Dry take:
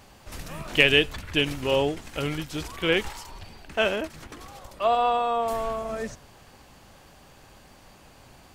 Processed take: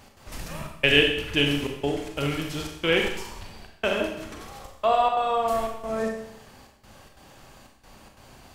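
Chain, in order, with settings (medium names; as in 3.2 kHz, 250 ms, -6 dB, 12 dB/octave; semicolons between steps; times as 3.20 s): trance gate "x.xxxxxx..xx" 180 bpm -60 dB; Schroeder reverb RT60 0.78 s, combs from 28 ms, DRR 2 dB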